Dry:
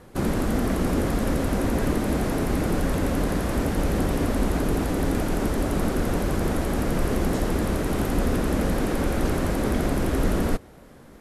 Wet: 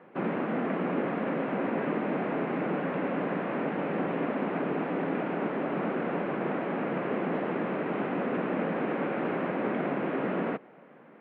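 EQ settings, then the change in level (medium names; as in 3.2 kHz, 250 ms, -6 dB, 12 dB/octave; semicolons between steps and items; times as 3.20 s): elliptic band-pass 160–2600 Hz, stop band 40 dB; distance through air 160 m; bass shelf 240 Hz -10 dB; 0.0 dB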